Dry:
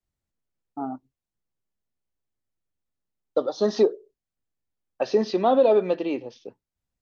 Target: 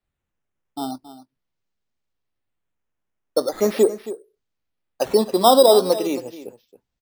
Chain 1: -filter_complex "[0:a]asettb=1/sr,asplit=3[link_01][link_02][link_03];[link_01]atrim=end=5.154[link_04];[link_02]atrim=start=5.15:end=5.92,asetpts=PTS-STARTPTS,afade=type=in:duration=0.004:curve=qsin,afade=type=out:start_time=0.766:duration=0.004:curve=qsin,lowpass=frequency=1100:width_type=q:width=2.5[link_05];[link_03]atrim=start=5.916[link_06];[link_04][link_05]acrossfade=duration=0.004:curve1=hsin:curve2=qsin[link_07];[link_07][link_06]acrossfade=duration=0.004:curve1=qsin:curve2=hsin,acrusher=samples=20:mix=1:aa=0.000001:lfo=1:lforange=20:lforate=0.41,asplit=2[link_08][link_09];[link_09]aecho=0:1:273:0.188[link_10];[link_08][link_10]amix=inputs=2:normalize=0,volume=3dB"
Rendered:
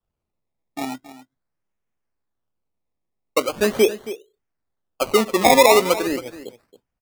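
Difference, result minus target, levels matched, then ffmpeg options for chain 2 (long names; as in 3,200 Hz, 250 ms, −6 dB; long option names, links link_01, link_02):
sample-and-hold swept by an LFO: distortion +13 dB
-filter_complex "[0:a]asettb=1/sr,asplit=3[link_01][link_02][link_03];[link_01]atrim=end=5.154[link_04];[link_02]atrim=start=5.15:end=5.92,asetpts=PTS-STARTPTS,afade=type=in:duration=0.004:curve=qsin,afade=type=out:start_time=0.766:duration=0.004:curve=qsin,lowpass=frequency=1100:width_type=q:width=2.5[link_05];[link_03]atrim=start=5.916[link_06];[link_04][link_05]acrossfade=duration=0.004:curve1=hsin:curve2=qsin[link_07];[link_07][link_06]acrossfade=duration=0.004:curve1=qsin:curve2=hsin,acrusher=samples=7:mix=1:aa=0.000001:lfo=1:lforange=7:lforate=0.41,asplit=2[link_08][link_09];[link_09]aecho=0:1:273:0.188[link_10];[link_08][link_10]amix=inputs=2:normalize=0,volume=3dB"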